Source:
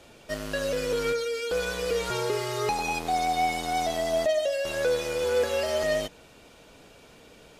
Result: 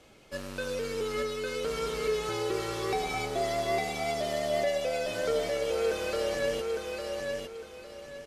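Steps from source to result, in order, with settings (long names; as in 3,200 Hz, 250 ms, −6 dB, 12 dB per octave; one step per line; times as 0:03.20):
repeating echo 786 ms, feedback 31%, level −3.5 dB
wrong playback speed 48 kHz file played as 44.1 kHz
level −5 dB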